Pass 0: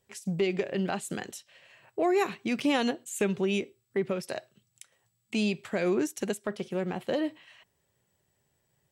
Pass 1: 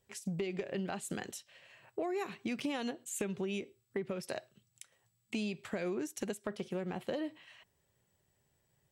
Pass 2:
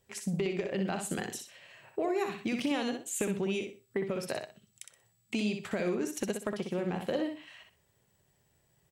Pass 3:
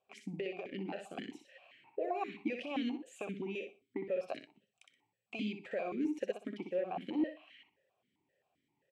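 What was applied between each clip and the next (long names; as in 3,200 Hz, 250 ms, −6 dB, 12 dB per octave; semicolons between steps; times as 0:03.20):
low-shelf EQ 62 Hz +7 dB; downward compressor 6 to 1, threshold −31 dBFS, peak gain reduction 9.5 dB; level −2.5 dB
repeating echo 62 ms, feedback 25%, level −6 dB; level +4 dB
formant filter that steps through the vowels 7.6 Hz; level +6 dB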